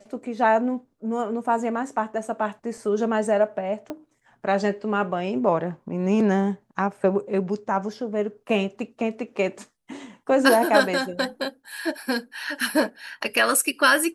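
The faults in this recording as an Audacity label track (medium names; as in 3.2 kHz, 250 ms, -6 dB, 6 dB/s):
3.900000	3.900000	pop -19 dBFS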